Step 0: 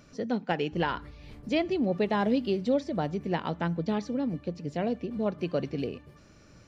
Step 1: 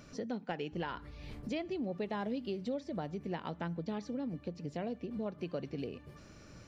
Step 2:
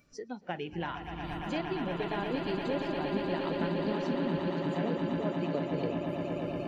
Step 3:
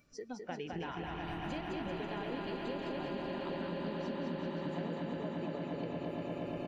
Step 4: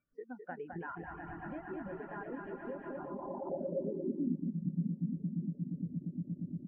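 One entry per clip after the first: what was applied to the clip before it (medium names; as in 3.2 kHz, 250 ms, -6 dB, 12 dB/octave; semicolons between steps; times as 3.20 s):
compression 2.5:1, threshold -41 dBFS, peak gain reduction 13.5 dB; trim +1 dB
on a send: echo with a slow build-up 117 ms, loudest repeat 8, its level -7 dB; on the sum: spectral noise reduction 16 dB; trim +2.5 dB
compression, threshold -35 dBFS, peak gain reduction 9 dB; bouncing-ball echo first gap 210 ms, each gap 0.85×, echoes 5; trim -2.5 dB
low-pass sweep 1.6 kHz -> 200 Hz, 2.91–4.63 s; reverb removal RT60 0.68 s; spectral contrast expander 1.5:1; trim +1.5 dB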